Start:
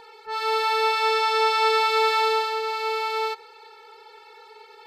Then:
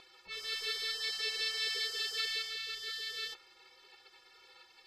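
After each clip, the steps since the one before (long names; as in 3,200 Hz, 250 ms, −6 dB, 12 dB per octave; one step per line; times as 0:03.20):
gate on every frequency bin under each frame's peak −15 dB weak
high-shelf EQ 10,000 Hz −11 dB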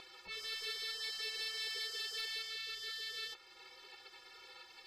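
downward compressor 1.5 to 1, threshold −57 dBFS, peak gain reduction 9.5 dB
soft clipping −37.5 dBFS, distortion −19 dB
level +4.5 dB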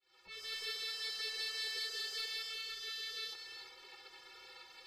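fade in at the beginning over 0.56 s
reverb whose tail is shaped and stops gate 400 ms rising, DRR 7.5 dB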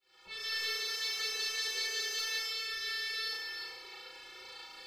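dynamic equaliser 2,500 Hz, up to +3 dB, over −52 dBFS, Q 0.78
on a send: flutter between parallel walls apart 6 metres, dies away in 0.78 s
on the sum: level +3 dB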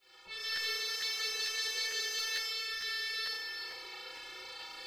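mains-hum notches 50/100/150/200/250/300/350/400 Hz
reversed playback
upward compression, threshold −40 dBFS
reversed playback
regular buffer underruns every 0.45 s, samples 512, repeat, from 0:00.55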